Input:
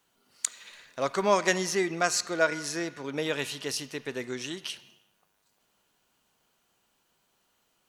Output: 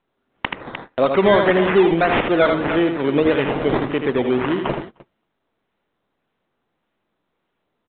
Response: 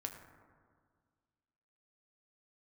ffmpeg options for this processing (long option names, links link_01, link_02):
-filter_complex "[0:a]acrusher=samples=13:mix=1:aa=0.000001:lfo=1:lforange=7.8:lforate=1.7,asplit=2[link_01][link_02];[link_02]aecho=0:1:79|302:0.398|0.15[link_03];[link_01][link_03]amix=inputs=2:normalize=0,agate=range=-24dB:threshold=-48dB:ratio=16:detection=peak,asplit=2[link_04][link_05];[link_05]acompressor=threshold=-35dB:ratio=6,volume=2dB[link_06];[link_04][link_06]amix=inputs=2:normalize=0,asoftclip=type=tanh:threshold=-16dB,equalizer=frequency=310:width_type=o:width=2.7:gain=7,volume=5.5dB" -ar 8000 -c:a pcm_mulaw